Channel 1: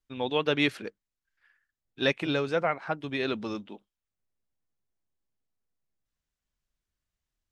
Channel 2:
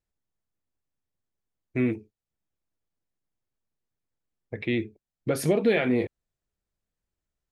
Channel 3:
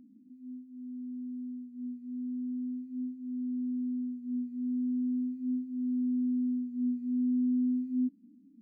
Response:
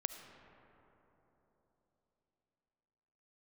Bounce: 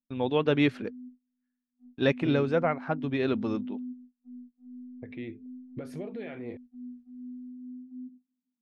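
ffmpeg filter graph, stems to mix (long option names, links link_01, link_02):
-filter_complex "[0:a]lowshelf=frequency=380:gain=8,volume=-1dB,asplit=2[link_01][link_02];[1:a]alimiter=limit=-22.5dB:level=0:latency=1:release=416,adelay=500,volume=-7dB[link_03];[2:a]equalizer=frequency=190:width=2.2:gain=9,volume=-10.5dB,asplit=2[link_04][link_05];[link_05]volume=-5dB[link_06];[link_02]apad=whole_len=379845[link_07];[link_04][link_07]sidechaingate=range=-33dB:threshold=-59dB:ratio=16:detection=peak[link_08];[3:a]atrim=start_sample=2205[link_09];[link_06][link_09]afir=irnorm=-1:irlink=0[link_10];[link_01][link_03][link_08][link_10]amix=inputs=4:normalize=0,agate=range=-28dB:threshold=-49dB:ratio=16:detection=peak,lowpass=frequency=2400:poles=1"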